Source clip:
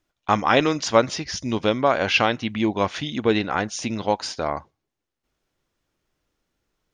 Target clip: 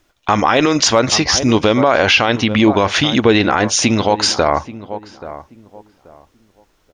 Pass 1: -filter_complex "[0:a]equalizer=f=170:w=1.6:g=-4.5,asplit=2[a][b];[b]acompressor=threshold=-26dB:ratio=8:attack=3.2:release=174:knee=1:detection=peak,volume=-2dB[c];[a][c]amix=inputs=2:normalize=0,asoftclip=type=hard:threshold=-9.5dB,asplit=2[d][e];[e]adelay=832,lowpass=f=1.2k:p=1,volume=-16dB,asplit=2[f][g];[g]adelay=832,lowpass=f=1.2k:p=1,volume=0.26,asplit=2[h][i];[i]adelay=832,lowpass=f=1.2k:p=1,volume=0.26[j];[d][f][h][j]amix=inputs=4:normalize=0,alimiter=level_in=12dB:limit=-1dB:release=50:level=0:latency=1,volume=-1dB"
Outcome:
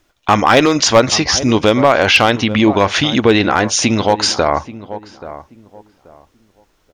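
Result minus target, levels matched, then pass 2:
hard clip: distortion +23 dB
-filter_complex "[0:a]equalizer=f=170:w=1.6:g=-4.5,asplit=2[a][b];[b]acompressor=threshold=-26dB:ratio=8:attack=3.2:release=174:knee=1:detection=peak,volume=-2dB[c];[a][c]amix=inputs=2:normalize=0,asoftclip=type=hard:threshold=-3dB,asplit=2[d][e];[e]adelay=832,lowpass=f=1.2k:p=1,volume=-16dB,asplit=2[f][g];[g]adelay=832,lowpass=f=1.2k:p=1,volume=0.26,asplit=2[h][i];[i]adelay=832,lowpass=f=1.2k:p=1,volume=0.26[j];[d][f][h][j]amix=inputs=4:normalize=0,alimiter=level_in=12dB:limit=-1dB:release=50:level=0:latency=1,volume=-1dB"

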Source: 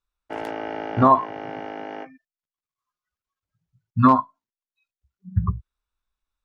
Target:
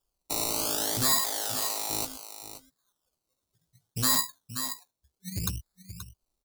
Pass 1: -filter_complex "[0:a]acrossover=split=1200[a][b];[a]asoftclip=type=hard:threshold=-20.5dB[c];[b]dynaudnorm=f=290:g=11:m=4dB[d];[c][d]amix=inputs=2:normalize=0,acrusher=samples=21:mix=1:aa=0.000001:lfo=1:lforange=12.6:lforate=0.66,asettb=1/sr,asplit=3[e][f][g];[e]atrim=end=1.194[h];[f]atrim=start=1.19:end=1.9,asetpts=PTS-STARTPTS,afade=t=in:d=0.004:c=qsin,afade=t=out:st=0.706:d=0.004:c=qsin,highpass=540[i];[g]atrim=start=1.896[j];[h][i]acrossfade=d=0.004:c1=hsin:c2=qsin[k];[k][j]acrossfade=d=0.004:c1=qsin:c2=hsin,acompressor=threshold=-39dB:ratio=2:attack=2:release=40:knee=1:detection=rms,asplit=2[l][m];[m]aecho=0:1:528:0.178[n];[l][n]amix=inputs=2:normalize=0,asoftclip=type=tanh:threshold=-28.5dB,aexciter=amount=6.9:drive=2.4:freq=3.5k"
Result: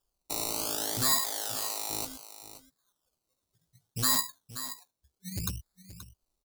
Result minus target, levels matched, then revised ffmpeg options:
hard clip: distortion +10 dB; compressor: peak gain reduction +3 dB
-filter_complex "[0:a]acrossover=split=1200[a][b];[a]asoftclip=type=hard:threshold=-11.5dB[c];[b]dynaudnorm=f=290:g=11:m=4dB[d];[c][d]amix=inputs=2:normalize=0,acrusher=samples=21:mix=1:aa=0.000001:lfo=1:lforange=12.6:lforate=0.66,asettb=1/sr,asplit=3[e][f][g];[e]atrim=end=1.194[h];[f]atrim=start=1.19:end=1.9,asetpts=PTS-STARTPTS,afade=t=in:d=0.004:c=qsin,afade=t=out:st=0.706:d=0.004:c=qsin,highpass=540[i];[g]atrim=start=1.896[j];[h][i]acrossfade=d=0.004:c1=hsin:c2=qsin[k];[k][j]acrossfade=d=0.004:c1=qsin:c2=hsin,acompressor=threshold=-29.5dB:ratio=2:attack=2:release=40:knee=1:detection=rms,asplit=2[l][m];[m]aecho=0:1:528:0.178[n];[l][n]amix=inputs=2:normalize=0,asoftclip=type=tanh:threshold=-28.5dB,aexciter=amount=6.9:drive=2.4:freq=3.5k"

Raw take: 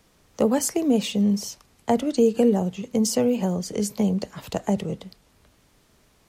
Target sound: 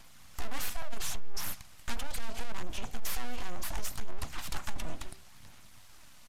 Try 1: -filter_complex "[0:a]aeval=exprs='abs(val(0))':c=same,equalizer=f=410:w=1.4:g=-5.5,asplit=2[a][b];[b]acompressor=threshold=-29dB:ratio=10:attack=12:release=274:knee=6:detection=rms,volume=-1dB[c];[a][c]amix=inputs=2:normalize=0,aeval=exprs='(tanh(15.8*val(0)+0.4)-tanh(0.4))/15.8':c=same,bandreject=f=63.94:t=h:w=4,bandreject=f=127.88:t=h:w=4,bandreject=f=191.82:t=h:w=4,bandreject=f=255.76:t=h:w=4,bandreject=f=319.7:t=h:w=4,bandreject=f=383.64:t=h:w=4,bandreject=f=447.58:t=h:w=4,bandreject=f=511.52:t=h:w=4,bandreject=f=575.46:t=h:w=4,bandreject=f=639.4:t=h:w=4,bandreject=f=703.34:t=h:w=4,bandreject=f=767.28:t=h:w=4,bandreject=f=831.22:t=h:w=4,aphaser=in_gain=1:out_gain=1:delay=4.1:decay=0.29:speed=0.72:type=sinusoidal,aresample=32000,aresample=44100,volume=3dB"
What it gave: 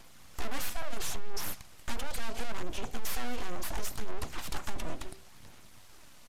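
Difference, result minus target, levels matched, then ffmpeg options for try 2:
500 Hz band +4.0 dB
-filter_complex "[0:a]aeval=exprs='abs(val(0))':c=same,equalizer=f=410:w=1.4:g=-13.5,asplit=2[a][b];[b]acompressor=threshold=-29dB:ratio=10:attack=12:release=274:knee=6:detection=rms,volume=-1dB[c];[a][c]amix=inputs=2:normalize=0,aeval=exprs='(tanh(15.8*val(0)+0.4)-tanh(0.4))/15.8':c=same,bandreject=f=63.94:t=h:w=4,bandreject=f=127.88:t=h:w=4,bandreject=f=191.82:t=h:w=4,bandreject=f=255.76:t=h:w=4,bandreject=f=319.7:t=h:w=4,bandreject=f=383.64:t=h:w=4,bandreject=f=447.58:t=h:w=4,bandreject=f=511.52:t=h:w=4,bandreject=f=575.46:t=h:w=4,bandreject=f=639.4:t=h:w=4,bandreject=f=703.34:t=h:w=4,bandreject=f=767.28:t=h:w=4,bandreject=f=831.22:t=h:w=4,aphaser=in_gain=1:out_gain=1:delay=4.1:decay=0.29:speed=0.72:type=sinusoidal,aresample=32000,aresample=44100,volume=3dB"

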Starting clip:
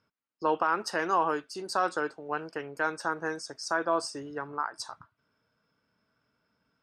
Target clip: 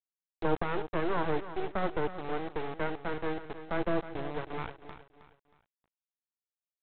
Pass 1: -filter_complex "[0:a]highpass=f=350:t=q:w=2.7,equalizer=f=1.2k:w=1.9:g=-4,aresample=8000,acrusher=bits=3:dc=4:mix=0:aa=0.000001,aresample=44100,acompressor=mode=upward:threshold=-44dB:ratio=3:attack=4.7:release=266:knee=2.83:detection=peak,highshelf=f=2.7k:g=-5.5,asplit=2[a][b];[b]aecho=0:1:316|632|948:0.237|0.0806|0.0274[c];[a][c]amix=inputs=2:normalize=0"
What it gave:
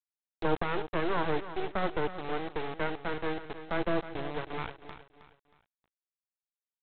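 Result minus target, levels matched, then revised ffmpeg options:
4000 Hz band +3.5 dB
-filter_complex "[0:a]highpass=f=350:t=q:w=2.7,equalizer=f=1.2k:w=1.9:g=-4,aresample=8000,acrusher=bits=3:dc=4:mix=0:aa=0.000001,aresample=44100,acompressor=mode=upward:threshold=-44dB:ratio=3:attack=4.7:release=266:knee=2.83:detection=peak,highshelf=f=2.7k:g=-13,asplit=2[a][b];[b]aecho=0:1:316|632|948:0.237|0.0806|0.0274[c];[a][c]amix=inputs=2:normalize=0"

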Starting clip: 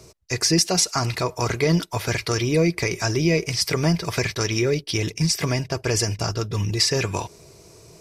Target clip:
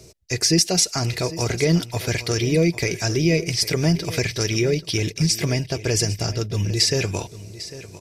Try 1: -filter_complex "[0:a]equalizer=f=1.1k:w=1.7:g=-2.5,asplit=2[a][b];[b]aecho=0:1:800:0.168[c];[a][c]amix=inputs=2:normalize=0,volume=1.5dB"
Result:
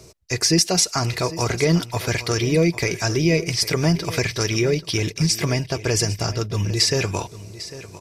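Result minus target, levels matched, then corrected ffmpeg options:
1000 Hz band +4.5 dB
-filter_complex "[0:a]equalizer=f=1.1k:w=1.7:g=-10.5,asplit=2[a][b];[b]aecho=0:1:800:0.168[c];[a][c]amix=inputs=2:normalize=0,volume=1.5dB"

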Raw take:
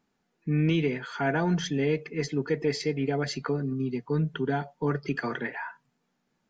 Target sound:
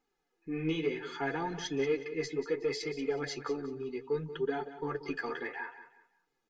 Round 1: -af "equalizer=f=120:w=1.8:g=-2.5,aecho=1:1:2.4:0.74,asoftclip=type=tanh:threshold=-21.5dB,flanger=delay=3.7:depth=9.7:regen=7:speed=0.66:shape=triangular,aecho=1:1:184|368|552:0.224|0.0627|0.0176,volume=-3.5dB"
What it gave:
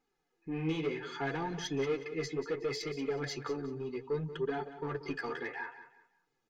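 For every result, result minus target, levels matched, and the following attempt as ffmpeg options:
soft clip: distortion +11 dB; 125 Hz band +4.0 dB
-af "equalizer=f=120:w=1.8:g=-2.5,aecho=1:1:2.4:0.74,asoftclip=type=tanh:threshold=-14dB,flanger=delay=3.7:depth=9.7:regen=7:speed=0.66:shape=triangular,aecho=1:1:184|368|552:0.224|0.0627|0.0176,volume=-3.5dB"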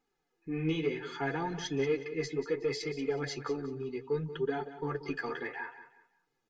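125 Hz band +3.5 dB
-af "equalizer=f=120:w=1.8:g=-9.5,aecho=1:1:2.4:0.74,asoftclip=type=tanh:threshold=-14dB,flanger=delay=3.7:depth=9.7:regen=7:speed=0.66:shape=triangular,aecho=1:1:184|368|552:0.224|0.0627|0.0176,volume=-3.5dB"

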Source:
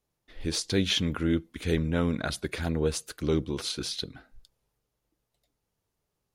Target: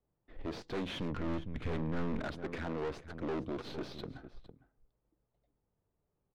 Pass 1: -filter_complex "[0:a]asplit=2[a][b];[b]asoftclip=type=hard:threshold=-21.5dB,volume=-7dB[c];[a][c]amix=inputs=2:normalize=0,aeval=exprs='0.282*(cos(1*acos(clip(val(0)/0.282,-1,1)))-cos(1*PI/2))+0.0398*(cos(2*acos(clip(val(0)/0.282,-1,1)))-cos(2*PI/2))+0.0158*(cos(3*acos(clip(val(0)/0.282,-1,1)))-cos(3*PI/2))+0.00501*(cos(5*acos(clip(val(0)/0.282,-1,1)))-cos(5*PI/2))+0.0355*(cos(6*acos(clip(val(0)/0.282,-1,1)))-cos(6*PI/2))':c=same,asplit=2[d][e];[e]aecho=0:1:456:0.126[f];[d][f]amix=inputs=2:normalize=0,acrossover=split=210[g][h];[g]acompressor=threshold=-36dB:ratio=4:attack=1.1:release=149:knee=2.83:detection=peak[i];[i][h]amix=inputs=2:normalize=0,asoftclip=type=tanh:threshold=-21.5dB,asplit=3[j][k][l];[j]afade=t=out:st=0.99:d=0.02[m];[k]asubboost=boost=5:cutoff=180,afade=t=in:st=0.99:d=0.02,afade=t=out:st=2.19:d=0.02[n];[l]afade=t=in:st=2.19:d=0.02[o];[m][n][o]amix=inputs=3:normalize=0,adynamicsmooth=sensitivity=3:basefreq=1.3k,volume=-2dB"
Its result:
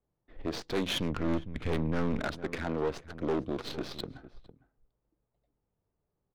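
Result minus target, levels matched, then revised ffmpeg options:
soft clip: distortion -7 dB
-filter_complex "[0:a]asplit=2[a][b];[b]asoftclip=type=hard:threshold=-21.5dB,volume=-7dB[c];[a][c]amix=inputs=2:normalize=0,aeval=exprs='0.282*(cos(1*acos(clip(val(0)/0.282,-1,1)))-cos(1*PI/2))+0.0398*(cos(2*acos(clip(val(0)/0.282,-1,1)))-cos(2*PI/2))+0.0158*(cos(3*acos(clip(val(0)/0.282,-1,1)))-cos(3*PI/2))+0.00501*(cos(5*acos(clip(val(0)/0.282,-1,1)))-cos(5*PI/2))+0.0355*(cos(6*acos(clip(val(0)/0.282,-1,1)))-cos(6*PI/2))':c=same,asplit=2[d][e];[e]aecho=0:1:456:0.126[f];[d][f]amix=inputs=2:normalize=0,acrossover=split=210[g][h];[g]acompressor=threshold=-36dB:ratio=4:attack=1.1:release=149:knee=2.83:detection=peak[i];[i][h]amix=inputs=2:normalize=0,asoftclip=type=tanh:threshold=-30.5dB,asplit=3[j][k][l];[j]afade=t=out:st=0.99:d=0.02[m];[k]asubboost=boost=5:cutoff=180,afade=t=in:st=0.99:d=0.02,afade=t=out:st=2.19:d=0.02[n];[l]afade=t=in:st=2.19:d=0.02[o];[m][n][o]amix=inputs=3:normalize=0,adynamicsmooth=sensitivity=3:basefreq=1.3k,volume=-2dB"

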